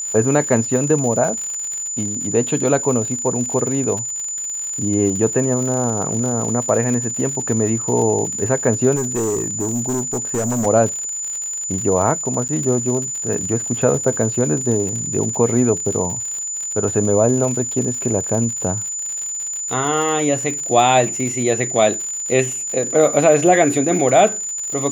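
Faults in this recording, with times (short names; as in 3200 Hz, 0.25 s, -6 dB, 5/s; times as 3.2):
crackle 92/s -25 dBFS
tone 7000 Hz -23 dBFS
8.95–10.67 clipped -16.5 dBFS
12.48–12.49 gap 9 ms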